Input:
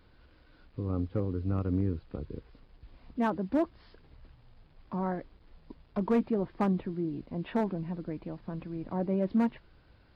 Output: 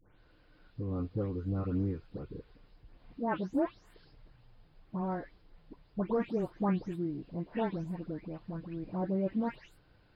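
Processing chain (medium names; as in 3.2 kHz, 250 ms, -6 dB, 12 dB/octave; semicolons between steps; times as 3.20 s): delay that grows with frequency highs late, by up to 311 ms; trim -2 dB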